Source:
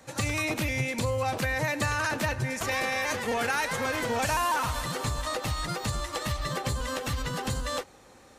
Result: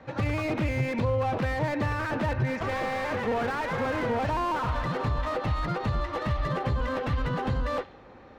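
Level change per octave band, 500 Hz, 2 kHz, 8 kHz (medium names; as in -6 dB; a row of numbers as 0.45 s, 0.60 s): +2.5 dB, -3.5 dB, -17.5 dB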